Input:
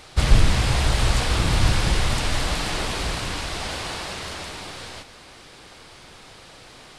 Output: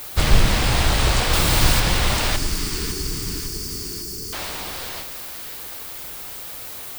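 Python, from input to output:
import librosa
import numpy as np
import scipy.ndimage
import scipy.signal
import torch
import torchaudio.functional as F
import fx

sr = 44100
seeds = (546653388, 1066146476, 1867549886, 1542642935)

y = fx.octave_divider(x, sr, octaves=2, level_db=-1.0)
y = fx.low_shelf(y, sr, hz=240.0, db=-5.5)
y = fx.dmg_noise_colour(y, sr, seeds[0], colour='violet', level_db=-39.0)
y = fx.high_shelf(y, sr, hz=6600.0, db=9.0, at=(1.33, 1.8))
y = fx.brickwall_bandstop(y, sr, low_hz=460.0, high_hz=4300.0, at=(2.36, 4.33))
y = fx.echo_split(y, sr, split_hz=1000.0, low_ms=101, high_ms=552, feedback_pct=52, wet_db=-10.5)
y = y * librosa.db_to_amplitude(3.5)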